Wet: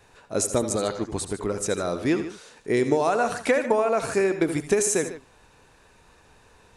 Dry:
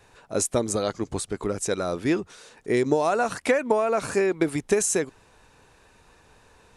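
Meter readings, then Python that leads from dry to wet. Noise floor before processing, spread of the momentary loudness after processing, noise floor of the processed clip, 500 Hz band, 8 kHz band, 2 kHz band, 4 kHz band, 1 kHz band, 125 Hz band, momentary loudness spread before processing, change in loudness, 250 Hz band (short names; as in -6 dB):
-58 dBFS, 9 LU, -57 dBFS, +0.5 dB, +0.5 dB, +0.5 dB, +0.5 dB, +0.5 dB, +0.5 dB, 8 LU, +0.5 dB, +0.5 dB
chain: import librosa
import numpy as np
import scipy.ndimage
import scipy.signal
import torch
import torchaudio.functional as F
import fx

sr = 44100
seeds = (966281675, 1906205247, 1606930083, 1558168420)

y = fx.echo_multitap(x, sr, ms=(72, 84, 149), db=(-14.5, -13.5, -14.5))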